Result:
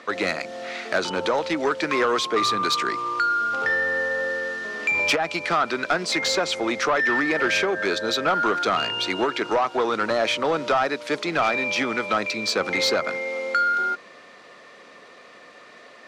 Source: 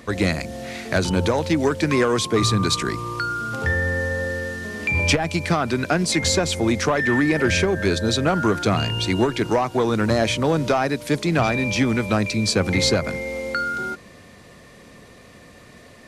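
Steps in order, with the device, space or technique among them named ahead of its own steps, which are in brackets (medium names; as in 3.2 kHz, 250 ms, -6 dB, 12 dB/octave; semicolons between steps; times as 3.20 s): intercom (band-pass 450–4800 Hz; peaking EQ 1.3 kHz +7 dB 0.23 oct; saturation -15.5 dBFS, distortion -16 dB); trim +2 dB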